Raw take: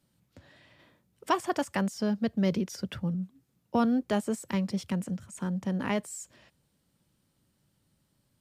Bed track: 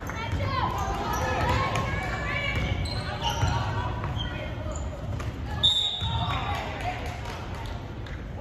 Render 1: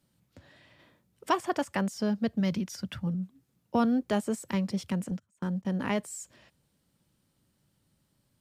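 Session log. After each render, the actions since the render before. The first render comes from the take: 1.35–1.88 s: tone controls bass -1 dB, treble -3 dB; 2.40–3.07 s: peaking EQ 440 Hz -10.5 dB; 5.11–5.65 s: gate -40 dBFS, range -26 dB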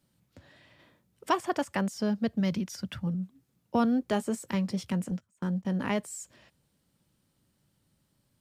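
4.07–5.83 s: doubling 17 ms -14 dB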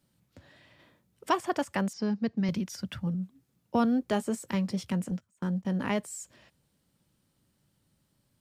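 1.93–2.49 s: cabinet simulation 130–5800 Hz, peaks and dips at 610 Hz -9 dB, 1.4 kHz -5 dB, 3.3 kHz -8 dB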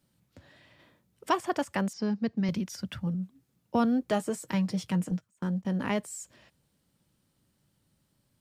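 4.08–5.30 s: comb 6.4 ms, depth 48%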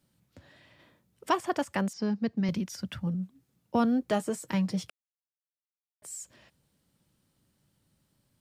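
4.90–6.02 s: mute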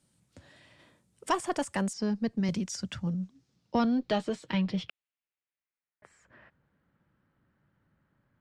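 single-diode clipper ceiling -15.5 dBFS; low-pass sweep 8.9 kHz -> 1.6 kHz, 2.36–6.32 s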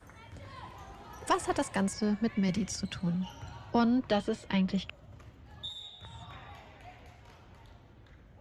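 add bed track -20 dB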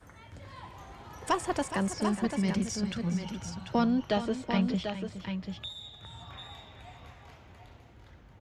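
multi-tap echo 418/742 ms -12/-7 dB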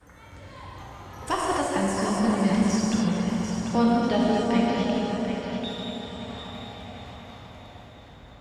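on a send: delay with an opening low-pass 332 ms, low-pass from 750 Hz, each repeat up 1 oct, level -6 dB; on the sum: gated-style reverb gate 300 ms flat, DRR -3.5 dB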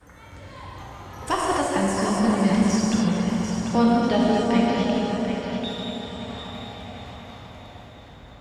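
trim +2.5 dB

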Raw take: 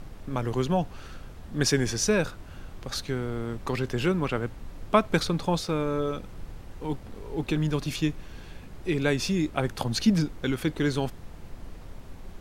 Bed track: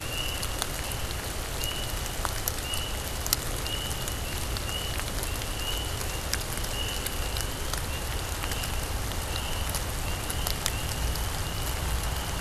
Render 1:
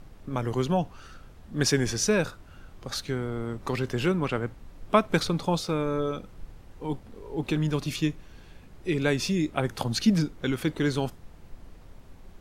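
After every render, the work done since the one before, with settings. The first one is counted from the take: noise print and reduce 6 dB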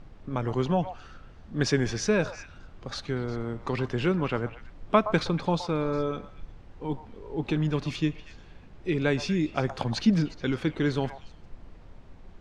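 distance through air 110 m; repeats whose band climbs or falls 119 ms, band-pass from 850 Hz, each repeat 1.4 oct, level -8.5 dB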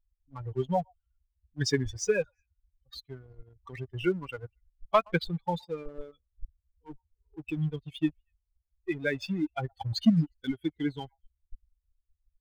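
expander on every frequency bin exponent 3; waveshaping leveller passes 1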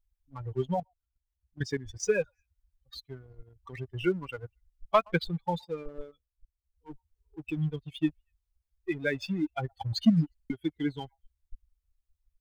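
0.74–2.03 s: level held to a coarse grid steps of 14 dB; 6.03–6.90 s: dip -19.5 dB, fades 0.37 s; 10.35 s: stutter in place 0.05 s, 3 plays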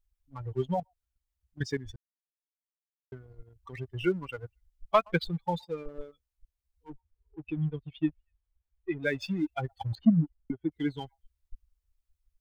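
1.96–3.12 s: mute; 6.90–9.03 s: distance through air 340 m; 9.95–10.72 s: low-pass 1.1 kHz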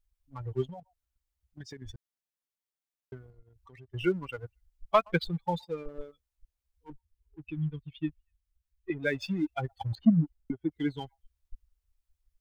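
0.69–1.82 s: compression 12:1, threshold -40 dBFS; 3.30–3.94 s: compression 2:1, threshold -58 dBFS; 6.90–8.90 s: peaking EQ 600 Hz -13.5 dB 1.4 oct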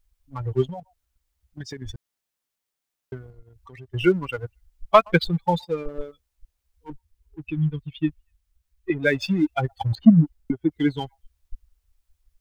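trim +9 dB

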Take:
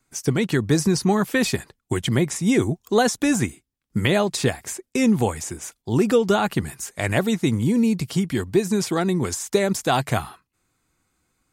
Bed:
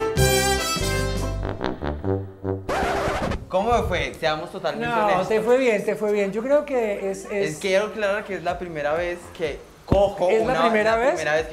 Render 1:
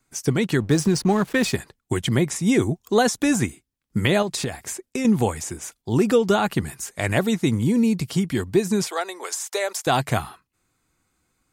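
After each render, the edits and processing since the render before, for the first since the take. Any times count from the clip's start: 0.60–1.53 s: hysteresis with a dead band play -31.5 dBFS; 4.22–5.05 s: compression 10:1, threshold -21 dBFS; 8.87–9.87 s: inverse Chebyshev high-pass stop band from 150 Hz, stop band 60 dB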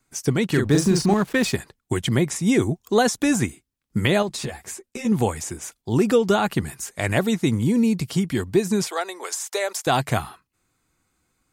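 0.46–1.14 s: doubling 41 ms -4 dB; 4.29–5.12 s: three-phase chorus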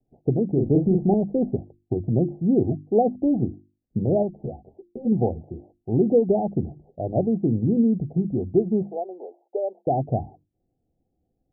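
steep low-pass 780 Hz 96 dB/octave; hum notches 50/100/150/200/250/300/350 Hz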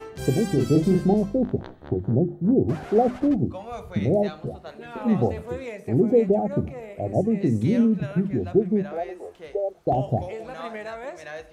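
add bed -15.5 dB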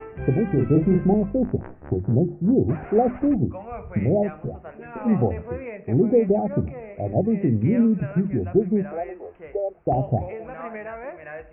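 steep low-pass 2.6 kHz 72 dB/octave; bass shelf 95 Hz +6.5 dB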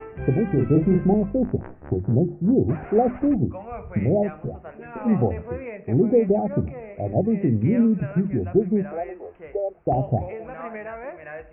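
no audible change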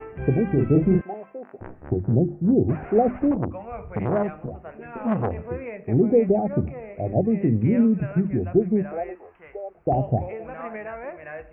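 1.01–1.61 s: high-pass 920 Hz; 3.31–5.39 s: transformer saturation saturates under 680 Hz; 9.15–9.75 s: resonant low shelf 740 Hz -7.5 dB, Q 1.5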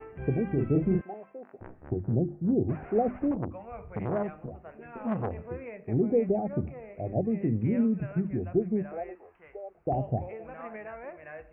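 trim -7 dB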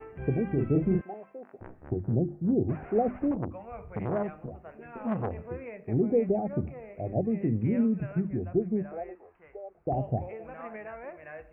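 8.25–9.97 s: distance through air 330 m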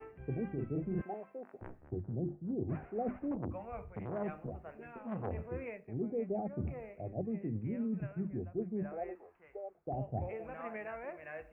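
reverse; compression 5:1, threshold -35 dBFS, peak gain reduction 13.5 dB; reverse; three bands expanded up and down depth 40%

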